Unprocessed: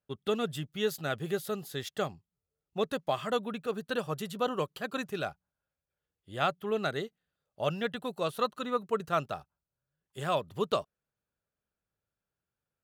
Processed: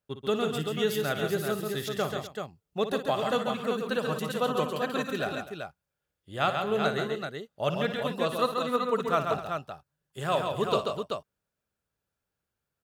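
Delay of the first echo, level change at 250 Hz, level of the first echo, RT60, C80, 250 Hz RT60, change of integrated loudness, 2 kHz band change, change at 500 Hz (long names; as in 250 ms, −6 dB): 57 ms, +4.5 dB, −10.5 dB, no reverb audible, no reverb audible, no reverb audible, +4.0 dB, +4.5 dB, +4.5 dB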